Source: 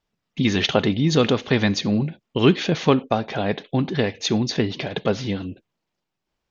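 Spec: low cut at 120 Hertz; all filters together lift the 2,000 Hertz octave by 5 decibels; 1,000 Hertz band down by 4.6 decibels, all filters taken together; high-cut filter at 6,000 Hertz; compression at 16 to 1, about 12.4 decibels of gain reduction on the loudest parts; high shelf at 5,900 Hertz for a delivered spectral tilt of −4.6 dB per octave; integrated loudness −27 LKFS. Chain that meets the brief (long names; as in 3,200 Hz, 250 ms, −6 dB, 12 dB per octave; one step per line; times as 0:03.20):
high-pass filter 120 Hz
low-pass filter 6,000 Hz
parametric band 1,000 Hz −9 dB
parametric band 2,000 Hz +7.5 dB
high-shelf EQ 5,900 Hz +8 dB
downward compressor 16 to 1, threshold −23 dBFS
level +1.5 dB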